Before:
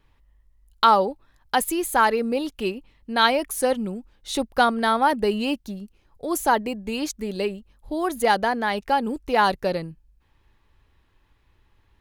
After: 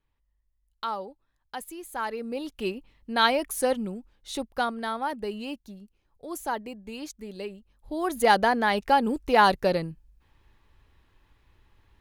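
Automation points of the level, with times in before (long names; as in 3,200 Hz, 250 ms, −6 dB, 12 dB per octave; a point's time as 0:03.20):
0:01.84 −15.5 dB
0:02.72 −3 dB
0:03.72 −3 dB
0:04.95 −10.5 dB
0:07.48 −10.5 dB
0:08.34 +0.5 dB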